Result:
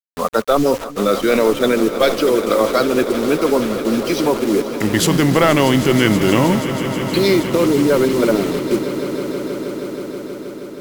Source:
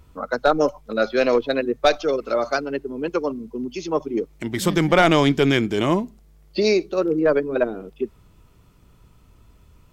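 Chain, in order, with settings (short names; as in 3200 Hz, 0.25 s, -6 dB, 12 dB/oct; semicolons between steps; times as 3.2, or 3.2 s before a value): low shelf 96 Hz -3 dB; in parallel at +2.5 dB: negative-ratio compressor -24 dBFS, ratio -1; on the sum: bit-crush 5-bit; speed mistake 48 kHz file played as 44.1 kHz; swelling echo 0.159 s, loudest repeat 5, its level -15.5 dB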